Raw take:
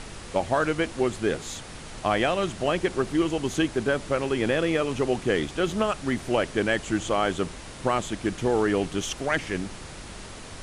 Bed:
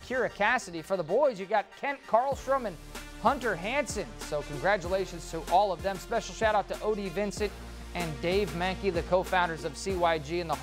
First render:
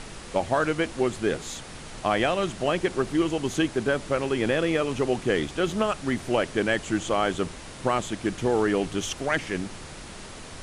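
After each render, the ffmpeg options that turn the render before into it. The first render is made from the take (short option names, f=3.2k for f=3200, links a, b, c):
-af "bandreject=f=50:t=h:w=4,bandreject=f=100:t=h:w=4"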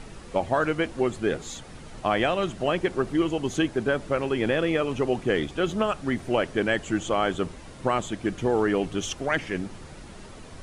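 -af "afftdn=nr=8:nf=-41"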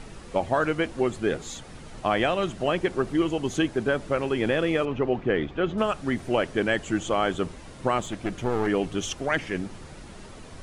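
-filter_complex "[0:a]asettb=1/sr,asplit=3[a][b][c];[a]atrim=end=4.854[d];[b]atrim=start=4.85:end=5.78,asetpts=PTS-STARTPTS,afade=t=in:d=0.004:c=qsin,afade=t=out:st=0.926:d=0.004:c=qsin,lowpass=2.6k[e];[c]atrim=start=5.776[f];[d][e]acrossfade=d=0.004:c1=hsin:c2=qsin[g];[g][f]acrossfade=d=0.004:c1=qsin:c2=hsin,asettb=1/sr,asplit=3[h][i][j];[h]atrim=end=8.004[k];[i]atrim=start=8:end=8.67,asetpts=PTS-STARTPTS,afade=t=in:d=0.004:c=qsin,afade=t=out:st=0.666:d=0.004:c=qsin,aeval=exprs='clip(val(0),-1,0.0282)':c=same[l];[j]atrim=start=8.666[m];[k][l]acrossfade=d=0.004:c1=hsin:c2=qsin[n];[n][m]acrossfade=d=0.004:c1=qsin:c2=hsin"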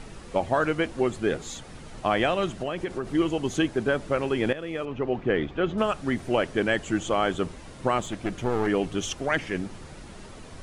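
-filter_complex "[0:a]asettb=1/sr,asplit=3[a][b][c];[a]atrim=end=2.554[d];[b]atrim=start=2.55:end=3.12,asetpts=PTS-STARTPTS,afade=t=in:d=0.004:c=qsin,afade=t=out:st=0.566:d=0.004:c=qsin,acompressor=threshold=-25dB:ratio=5:attack=3.2:release=140:knee=1:detection=peak[e];[c]atrim=start=3.116[f];[d][e]acrossfade=d=0.004:c1=hsin:c2=qsin[g];[g][f]acrossfade=d=0.004:c1=qsin:c2=hsin,asplit=2[h][i];[h]atrim=end=4.53,asetpts=PTS-STARTPTS,afade=t=out:st=4.526:d=0.004:c=hsin:silence=0.199526[j];[i]atrim=start=4.53,asetpts=PTS-STARTPTS,afade=t=in:d=0.78:silence=0.199526[k];[j][k]concat=n=2:v=0:a=1"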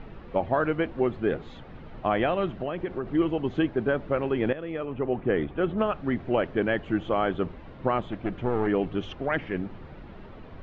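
-af "lowpass=f=3.7k:w=0.5412,lowpass=f=3.7k:w=1.3066,highshelf=f=2.7k:g=-11.5"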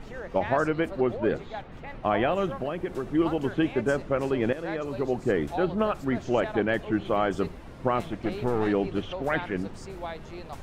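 -filter_complex "[1:a]volume=-10.5dB[a];[0:a][a]amix=inputs=2:normalize=0"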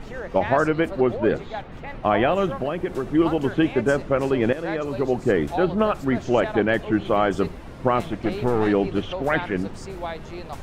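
-af "volume=5dB"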